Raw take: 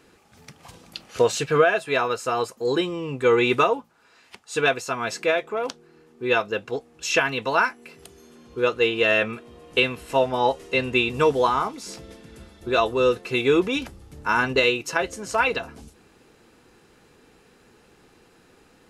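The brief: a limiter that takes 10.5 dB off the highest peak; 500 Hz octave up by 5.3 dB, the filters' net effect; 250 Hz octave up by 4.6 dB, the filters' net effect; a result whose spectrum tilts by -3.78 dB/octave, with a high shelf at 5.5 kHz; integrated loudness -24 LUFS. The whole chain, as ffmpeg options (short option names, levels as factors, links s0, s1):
-af "equalizer=f=250:t=o:g=4,equalizer=f=500:t=o:g=5,highshelf=f=5500:g=7,volume=0.891,alimiter=limit=0.237:level=0:latency=1"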